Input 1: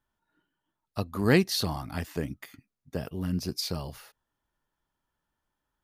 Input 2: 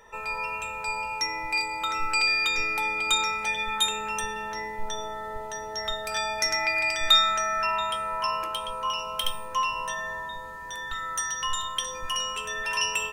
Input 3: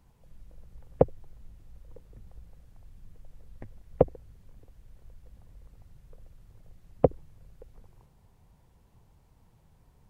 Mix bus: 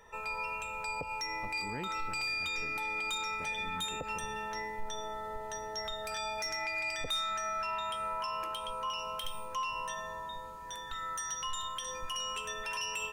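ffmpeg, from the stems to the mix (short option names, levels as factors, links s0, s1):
-filter_complex "[0:a]lowpass=f=2900:w=0.5412,lowpass=f=2900:w=1.3066,adelay=450,volume=0.168[s0];[1:a]bandreject=f=298.5:t=h:w=4,bandreject=f=597:t=h:w=4,bandreject=f=895.5:t=h:w=4,bandreject=f=1194:t=h:w=4,bandreject=f=1492.5:t=h:w=4,bandreject=f=1791:t=h:w=4,asoftclip=type=tanh:threshold=0.158,volume=0.596[s1];[2:a]volume=0.266[s2];[s0][s1][s2]amix=inputs=3:normalize=0,alimiter=level_in=1.68:limit=0.0631:level=0:latency=1:release=111,volume=0.596"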